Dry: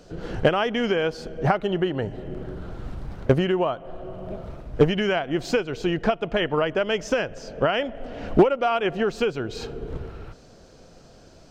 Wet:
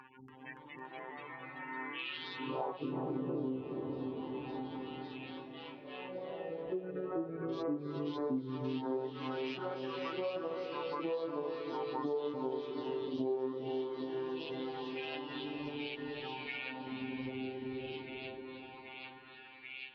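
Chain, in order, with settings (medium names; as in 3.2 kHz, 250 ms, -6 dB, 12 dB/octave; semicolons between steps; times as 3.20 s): peak limiter -17 dBFS, peak gain reduction 9.5 dB; robot voice 226 Hz; speed mistake 78 rpm record played at 45 rpm; spectral gate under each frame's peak -25 dB strong; touch-sensitive phaser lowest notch 590 Hz, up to 1.6 kHz, full sweep at -27.5 dBFS; RIAA curve playback; feedback echo behind a high-pass 788 ms, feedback 74%, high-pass 2.3 kHz, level -5 dB; LFO high-pass sine 0.21 Hz 360–2700 Hz; on a send: echo that smears into a reverb 479 ms, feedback 45%, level -8 dB; on the sum: ever faster or slower copies 284 ms, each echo +2 st, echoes 3; compression 4:1, threshold -46 dBFS, peak gain reduction 24 dB; trim +8 dB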